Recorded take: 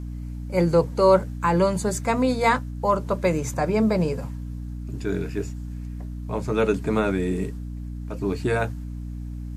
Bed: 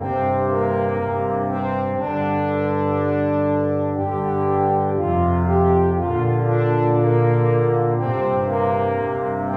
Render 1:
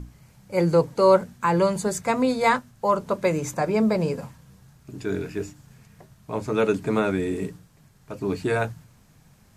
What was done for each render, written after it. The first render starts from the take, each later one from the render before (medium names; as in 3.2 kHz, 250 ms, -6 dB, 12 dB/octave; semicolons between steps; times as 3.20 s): hum notches 60/120/180/240/300 Hz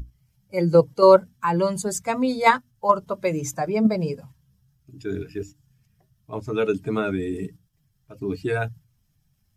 expander on every frequency bin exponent 1.5; in parallel at +1 dB: level held to a coarse grid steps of 19 dB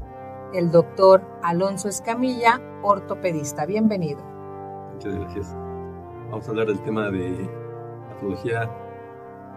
add bed -17 dB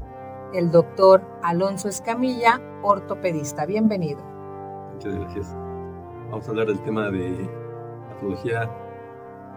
median filter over 3 samples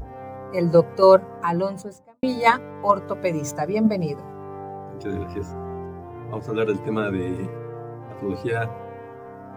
1.37–2.23 s: studio fade out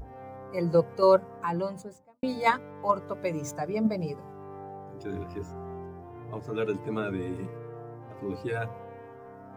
trim -7 dB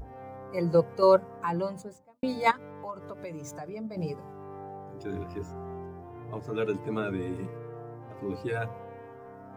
2.51–3.97 s: compression 3:1, threshold -38 dBFS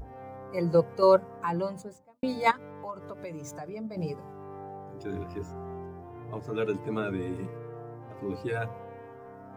no audible change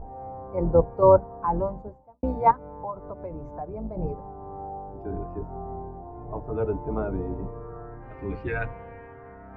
octave divider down 2 oct, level +1 dB; low-pass sweep 860 Hz -> 2.1 kHz, 7.45–8.13 s